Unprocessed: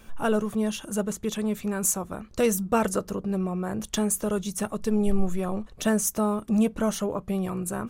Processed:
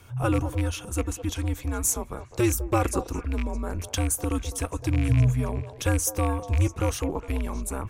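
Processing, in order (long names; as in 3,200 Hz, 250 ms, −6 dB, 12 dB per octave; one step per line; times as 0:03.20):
loose part that buzzes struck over −26 dBFS, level −24 dBFS
echo through a band-pass that steps 206 ms, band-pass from 760 Hz, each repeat 1.4 octaves, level −9 dB
frequency shifter −130 Hz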